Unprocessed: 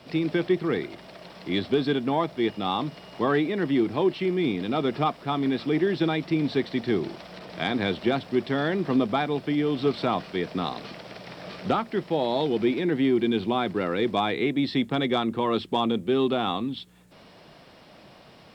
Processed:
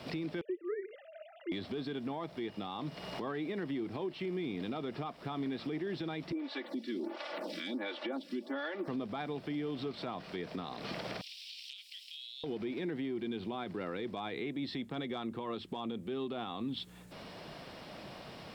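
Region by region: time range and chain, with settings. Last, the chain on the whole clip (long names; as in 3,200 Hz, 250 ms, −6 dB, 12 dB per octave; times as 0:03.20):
0:00.41–0:01.52: three sine waves on the formant tracks + notch comb filter 1,100 Hz
0:06.32–0:08.88: high-pass filter 230 Hz 24 dB per octave + comb filter 3.5 ms, depth 94% + phaser with staggered stages 1.4 Hz
0:11.21–0:12.44: Butterworth high-pass 2,700 Hz 48 dB per octave + downward compressor 10 to 1, threshold −45 dBFS
whole clip: downward compressor 6 to 1, threshold −36 dBFS; brickwall limiter −32 dBFS; level +2.5 dB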